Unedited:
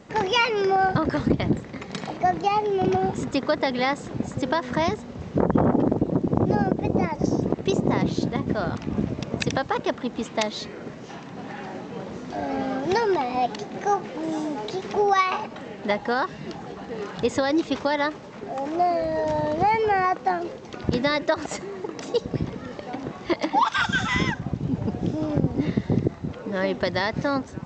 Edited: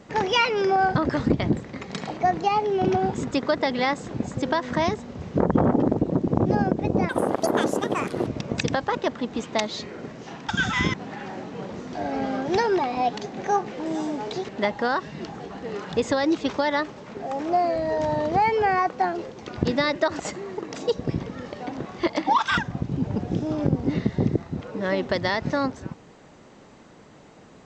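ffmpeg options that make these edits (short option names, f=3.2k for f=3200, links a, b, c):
-filter_complex "[0:a]asplit=7[a][b][c][d][e][f][g];[a]atrim=end=7.094[h];[b]atrim=start=7.09:end=9.09,asetpts=PTS-STARTPTS,asetrate=74970,aresample=44100,atrim=end_sample=51882,asetpts=PTS-STARTPTS[i];[c]atrim=start=9.086:end=11.312[j];[d]atrim=start=23.838:end=24.292[k];[e]atrim=start=11.308:end=14.862[l];[f]atrim=start=15.748:end=23.842[m];[g]atrim=start=24.288[n];[h][i]acrossfade=d=0.004:c1=hsin:c2=hsin[o];[o][j]acrossfade=d=0.004:c1=hsin:c2=hsin[p];[p][k]acrossfade=d=0.004:c1=hsin:c2=hsin[q];[q][l]acrossfade=d=0.004:c1=hsin:c2=hsin[r];[r][m]acrossfade=d=0.004:c1=hsin:c2=hsin[s];[s][n]acrossfade=d=0.004:c1=hsin:c2=hsin"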